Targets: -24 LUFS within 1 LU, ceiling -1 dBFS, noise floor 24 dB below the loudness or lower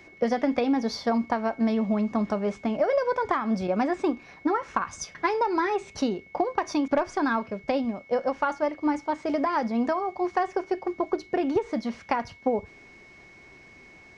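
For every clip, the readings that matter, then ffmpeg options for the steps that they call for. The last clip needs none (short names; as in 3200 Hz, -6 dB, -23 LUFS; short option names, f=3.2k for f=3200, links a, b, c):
steady tone 2200 Hz; tone level -50 dBFS; loudness -27.0 LUFS; peak -10.0 dBFS; loudness target -24.0 LUFS
-> -af "bandreject=f=2.2k:w=30"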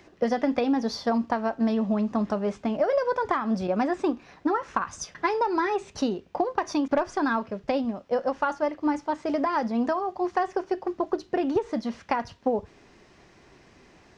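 steady tone none; loudness -27.0 LUFS; peak -10.5 dBFS; loudness target -24.0 LUFS
-> -af "volume=3dB"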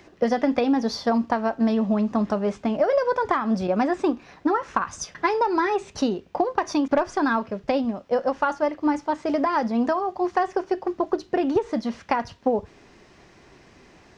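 loudness -24.0 LUFS; peak -7.5 dBFS; noise floor -53 dBFS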